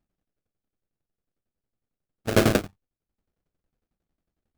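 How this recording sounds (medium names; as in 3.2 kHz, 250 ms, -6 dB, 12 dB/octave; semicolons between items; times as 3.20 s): aliases and images of a low sample rate 1 kHz, jitter 20%; tremolo saw down 11 Hz, depth 95%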